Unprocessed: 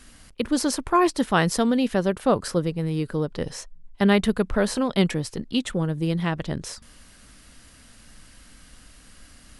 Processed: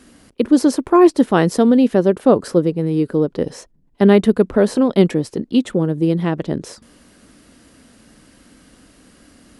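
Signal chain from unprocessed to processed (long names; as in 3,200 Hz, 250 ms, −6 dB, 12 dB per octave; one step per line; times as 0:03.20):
high-pass filter 69 Hz 6 dB per octave
parametric band 340 Hz +13 dB 2.2 octaves
level −1.5 dB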